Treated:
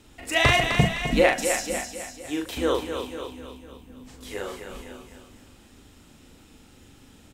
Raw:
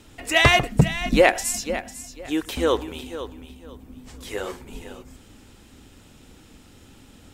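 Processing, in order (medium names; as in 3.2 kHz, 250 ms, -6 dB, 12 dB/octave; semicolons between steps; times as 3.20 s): doubling 40 ms -4 dB; thinning echo 257 ms, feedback 32%, high-pass 350 Hz, level -6 dB; trim -4.5 dB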